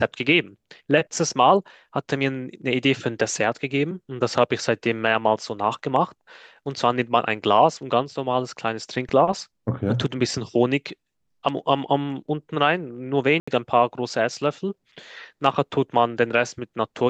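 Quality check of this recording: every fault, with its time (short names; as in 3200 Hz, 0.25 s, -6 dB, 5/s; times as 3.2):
13.4–13.47 gap 75 ms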